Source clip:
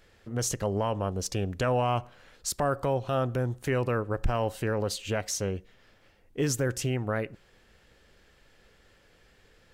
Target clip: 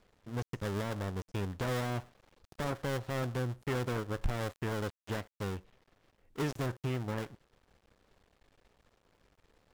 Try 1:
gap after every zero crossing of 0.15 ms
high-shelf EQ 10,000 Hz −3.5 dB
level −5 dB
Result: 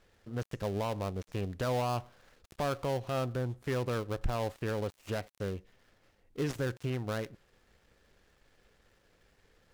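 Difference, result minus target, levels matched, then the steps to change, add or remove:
gap after every zero crossing: distortion −7 dB
change: gap after every zero crossing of 0.52 ms

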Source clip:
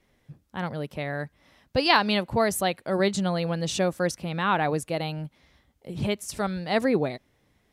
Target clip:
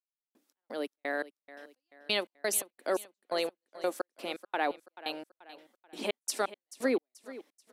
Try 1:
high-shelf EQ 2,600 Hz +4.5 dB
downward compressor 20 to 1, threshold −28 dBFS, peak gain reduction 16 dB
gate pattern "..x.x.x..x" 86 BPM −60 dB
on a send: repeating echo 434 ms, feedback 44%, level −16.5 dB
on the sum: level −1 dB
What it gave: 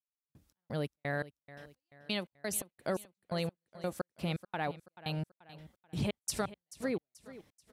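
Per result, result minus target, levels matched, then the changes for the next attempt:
downward compressor: peak gain reduction +5.5 dB; 250 Hz band +4.0 dB
change: downward compressor 20 to 1, threshold −22 dBFS, peak gain reduction 10.5 dB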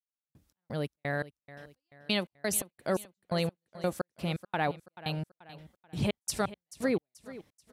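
250 Hz band +4.0 dB
add first: Butterworth high-pass 250 Hz 48 dB per octave

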